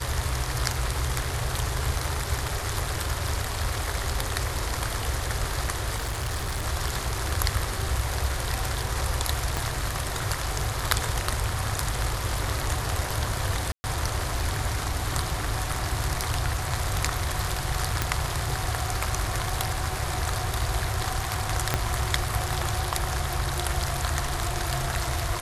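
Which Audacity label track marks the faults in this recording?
5.950000	6.650000	clipped -25 dBFS
9.570000	9.570000	pop -11 dBFS
13.720000	13.840000	gap 0.12 s
18.020000	18.020000	pop -7 dBFS
21.740000	21.740000	pop -7 dBFS

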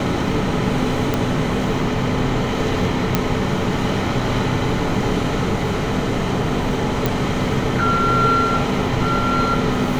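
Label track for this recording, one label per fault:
1.140000	1.140000	pop -5 dBFS
3.150000	3.150000	pop -2 dBFS
7.060000	7.060000	pop

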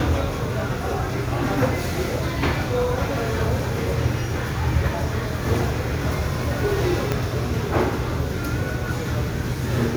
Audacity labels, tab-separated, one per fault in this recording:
7.120000	7.120000	pop -8 dBFS

